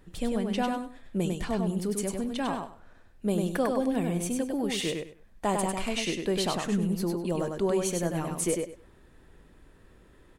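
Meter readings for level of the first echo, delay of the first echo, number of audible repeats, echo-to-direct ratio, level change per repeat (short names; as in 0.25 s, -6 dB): -4.0 dB, 99 ms, 3, -4.0 dB, -13.5 dB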